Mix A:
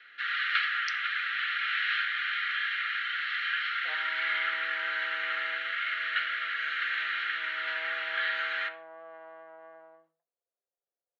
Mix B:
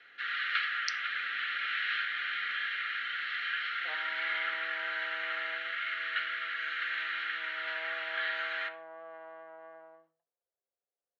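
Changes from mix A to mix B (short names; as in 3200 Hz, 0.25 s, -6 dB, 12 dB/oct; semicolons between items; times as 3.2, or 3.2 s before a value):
speech +5.0 dB; first sound -3.5 dB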